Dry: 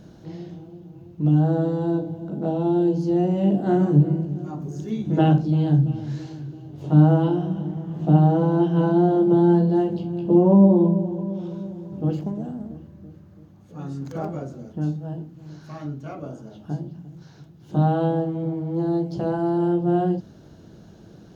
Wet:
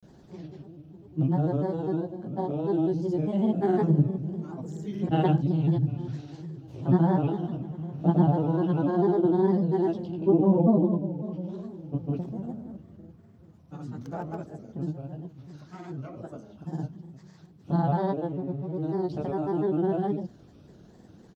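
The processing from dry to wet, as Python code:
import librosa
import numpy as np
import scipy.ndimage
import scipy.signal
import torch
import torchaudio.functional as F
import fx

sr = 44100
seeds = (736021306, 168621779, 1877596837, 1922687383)

y = fx.granulator(x, sr, seeds[0], grain_ms=100.0, per_s=20.0, spray_ms=100.0, spread_st=3)
y = y * 10.0 ** (-4.5 / 20.0)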